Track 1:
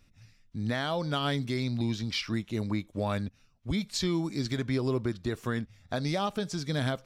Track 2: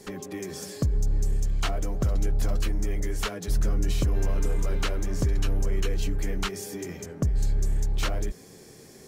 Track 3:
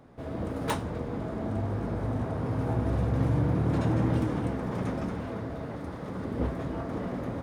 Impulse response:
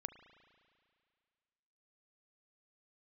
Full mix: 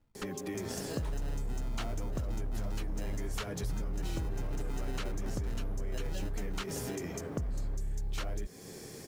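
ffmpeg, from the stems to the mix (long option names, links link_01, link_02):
-filter_complex "[0:a]acrusher=samples=39:mix=1:aa=0.000001,volume=-7.5dB[link_01];[1:a]acompressor=threshold=-25dB:ratio=6,acrusher=bits=10:mix=0:aa=0.000001,adelay=150,volume=2.5dB[link_02];[2:a]asoftclip=type=tanh:threshold=-30dB,adelay=350,volume=-5dB[link_03];[link_01][link_02][link_03]amix=inputs=3:normalize=0,acompressor=threshold=-39dB:ratio=2"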